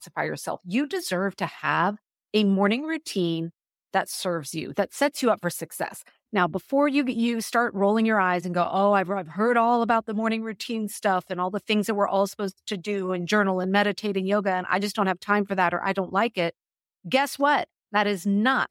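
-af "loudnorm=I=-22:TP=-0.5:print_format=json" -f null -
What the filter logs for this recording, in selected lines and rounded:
"input_i" : "-24.8",
"input_tp" : "-7.0",
"input_lra" : "3.2",
"input_thresh" : "-35.0",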